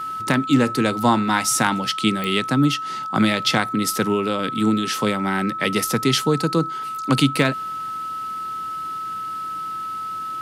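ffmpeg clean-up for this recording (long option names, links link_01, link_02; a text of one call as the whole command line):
ffmpeg -i in.wav -af "adeclick=threshold=4,bandreject=frequency=1300:width=30" out.wav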